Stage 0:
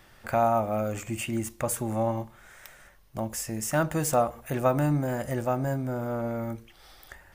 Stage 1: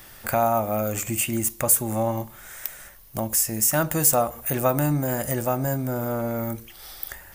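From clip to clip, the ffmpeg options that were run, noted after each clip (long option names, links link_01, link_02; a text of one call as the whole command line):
ffmpeg -i in.wav -filter_complex "[0:a]aemphasis=mode=production:type=50fm,asplit=2[link_01][link_02];[link_02]acompressor=threshold=-32dB:ratio=6,volume=0dB[link_03];[link_01][link_03]amix=inputs=2:normalize=0" out.wav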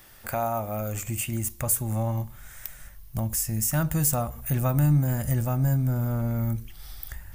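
ffmpeg -i in.wav -af "asubboost=boost=8:cutoff=150,volume=-6dB" out.wav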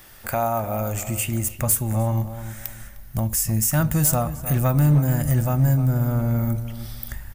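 ffmpeg -i in.wav -filter_complex "[0:a]asplit=2[link_01][link_02];[link_02]adelay=305,lowpass=frequency=2100:poles=1,volume=-11.5dB,asplit=2[link_03][link_04];[link_04]adelay=305,lowpass=frequency=2100:poles=1,volume=0.29,asplit=2[link_05][link_06];[link_06]adelay=305,lowpass=frequency=2100:poles=1,volume=0.29[link_07];[link_01][link_03][link_05][link_07]amix=inputs=4:normalize=0,volume=16.5dB,asoftclip=hard,volume=-16.5dB,volume=4.5dB" out.wav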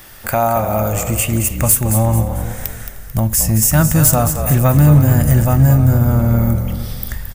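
ffmpeg -i in.wav -filter_complex "[0:a]asplit=5[link_01][link_02][link_03][link_04][link_05];[link_02]adelay=221,afreqshift=-44,volume=-8.5dB[link_06];[link_03]adelay=442,afreqshift=-88,volume=-16.7dB[link_07];[link_04]adelay=663,afreqshift=-132,volume=-24.9dB[link_08];[link_05]adelay=884,afreqshift=-176,volume=-33dB[link_09];[link_01][link_06][link_07][link_08][link_09]amix=inputs=5:normalize=0,volume=7.5dB" out.wav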